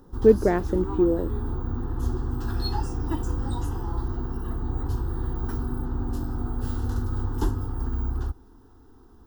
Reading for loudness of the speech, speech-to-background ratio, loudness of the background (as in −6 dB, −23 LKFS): −22.5 LKFS, 8.0 dB, −30.5 LKFS